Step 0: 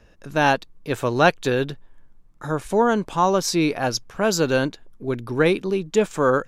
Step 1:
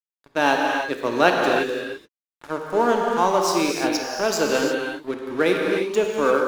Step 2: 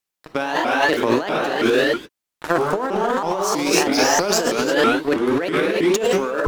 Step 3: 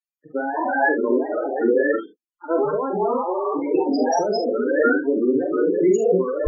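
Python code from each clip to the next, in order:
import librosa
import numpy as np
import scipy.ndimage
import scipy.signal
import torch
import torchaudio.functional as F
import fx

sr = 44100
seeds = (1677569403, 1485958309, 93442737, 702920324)

y1 = scipy.signal.sosfilt(scipy.signal.butter(4, 220.0, 'highpass', fs=sr, output='sos'), x)
y1 = np.sign(y1) * np.maximum(np.abs(y1) - 10.0 ** (-34.0 / 20.0), 0.0)
y1 = fx.rev_gated(y1, sr, seeds[0], gate_ms=370, shape='flat', drr_db=0.0)
y1 = y1 * 10.0 ** (-1.0 / 20.0)
y2 = fx.over_compress(y1, sr, threshold_db=-27.0, ratio=-1.0)
y2 = fx.vibrato_shape(y2, sr, shape='saw_up', rate_hz=3.1, depth_cents=250.0)
y2 = y2 * 10.0 ** (7.5 / 20.0)
y3 = fx.vibrato(y2, sr, rate_hz=1.9, depth_cents=56.0)
y3 = fx.spec_topn(y3, sr, count=8)
y3 = fx.room_early_taps(y3, sr, ms=(44, 71), db=(-6.5, -12.5))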